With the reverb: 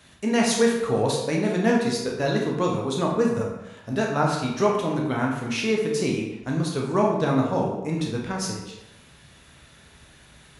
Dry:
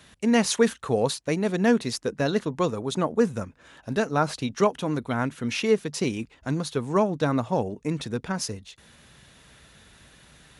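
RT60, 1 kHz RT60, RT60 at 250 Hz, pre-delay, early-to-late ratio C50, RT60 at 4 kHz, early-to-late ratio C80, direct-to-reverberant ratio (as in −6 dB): 0.95 s, 1.0 s, 0.90 s, 12 ms, 3.0 dB, 0.70 s, 6.0 dB, −1.5 dB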